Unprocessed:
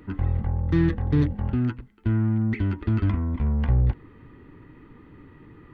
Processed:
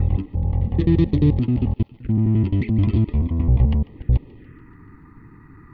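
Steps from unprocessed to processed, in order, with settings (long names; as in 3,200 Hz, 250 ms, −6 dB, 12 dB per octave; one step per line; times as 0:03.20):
slices reordered back to front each 87 ms, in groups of 4
phaser swept by the level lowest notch 470 Hz, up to 1,500 Hz, full sweep at −27 dBFS
feedback echo with a high-pass in the loop 144 ms, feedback 62%, high-pass 760 Hz, level −18.5 dB
level +5 dB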